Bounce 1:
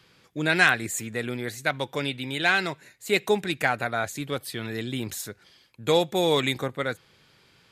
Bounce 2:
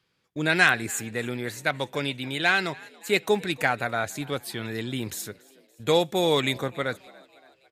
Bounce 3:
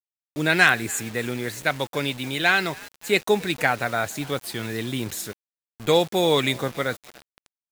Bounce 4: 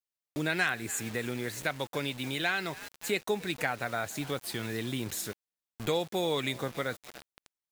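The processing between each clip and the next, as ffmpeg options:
-filter_complex "[0:a]agate=range=-14dB:threshold=-46dB:ratio=16:detection=peak,asplit=5[a][b][c][d][e];[b]adelay=285,afreqshift=67,volume=-23.5dB[f];[c]adelay=570,afreqshift=134,volume=-28.5dB[g];[d]adelay=855,afreqshift=201,volume=-33.6dB[h];[e]adelay=1140,afreqshift=268,volume=-38.6dB[i];[a][f][g][h][i]amix=inputs=5:normalize=0"
-af "acrusher=bits=6:mix=0:aa=0.000001,volume=2.5dB"
-af "acompressor=threshold=-35dB:ratio=2"

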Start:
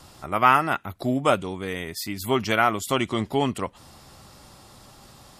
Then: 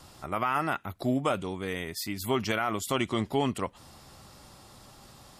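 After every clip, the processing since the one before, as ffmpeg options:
-af "alimiter=limit=-13.5dB:level=0:latency=1:release=39,volume=-3dB"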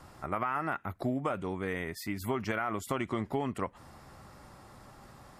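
-af "highshelf=f=2.5k:t=q:w=1.5:g=-7.5,acompressor=threshold=-28dB:ratio=6"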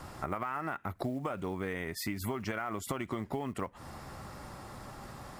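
-af "acompressor=threshold=-39dB:ratio=6,acrusher=bits=8:mode=log:mix=0:aa=0.000001,volume=6.5dB"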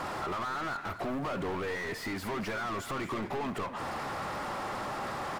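-filter_complex "[0:a]asplit=2[a][b];[b]highpass=f=720:p=1,volume=38dB,asoftclip=type=tanh:threshold=-19dB[c];[a][c]amix=inputs=2:normalize=0,lowpass=f=1.6k:p=1,volume=-6dB,aecho=1:1:232:0.237,volume=-7.5dB"

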